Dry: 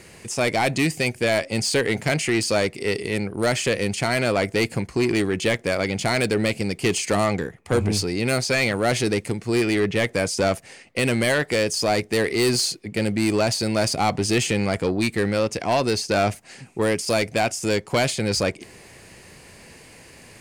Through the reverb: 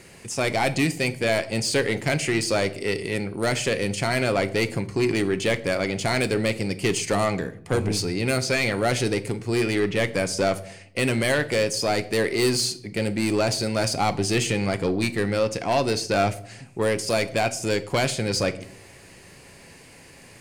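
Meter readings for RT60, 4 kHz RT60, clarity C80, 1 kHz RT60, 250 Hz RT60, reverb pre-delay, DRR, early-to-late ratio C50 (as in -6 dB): 0.60 s, 0.45 s, 20.5 dB, 0.55 s, 0.85 s, 6 ms, 10.0 dB, 17.0 dB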